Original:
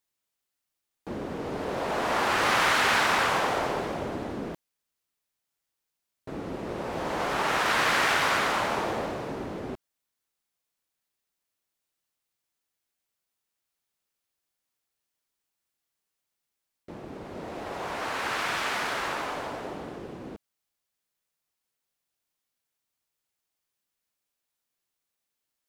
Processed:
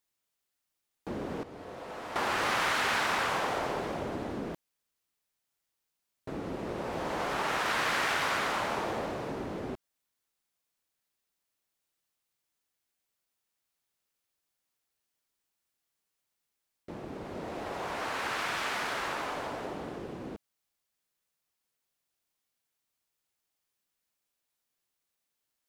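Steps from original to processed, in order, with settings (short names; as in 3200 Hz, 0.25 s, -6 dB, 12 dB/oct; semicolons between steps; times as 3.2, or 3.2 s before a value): 1.43–2.16 resonator 100 Hz, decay 1.6 s, harmonics odd, mix 80%; compressor 1.5:1, threshold -36 dBFS, peak gain reduction 6 dB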